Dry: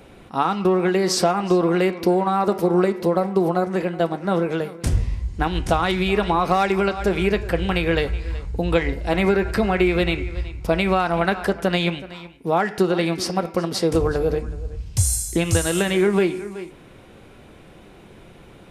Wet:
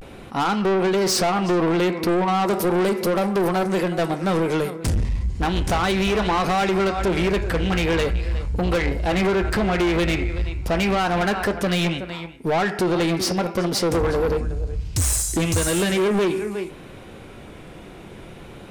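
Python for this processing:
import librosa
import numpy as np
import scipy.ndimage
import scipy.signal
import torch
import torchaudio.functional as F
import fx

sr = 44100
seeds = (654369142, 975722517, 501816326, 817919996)

y = fx.high_shelf(x, sr, hz=4700.0, db=10.5, at=(2.47, 4.7))
y = fx.vibrato(y, sr, rate_hz=0.38, depth_cents=60.0)
y = 10.0 ** (-22.5 / 20.0) * np.tanh(y / 10.0 ** (-22.5 / 20.0))
y = y * librosa.db_to_amplitude(5.5)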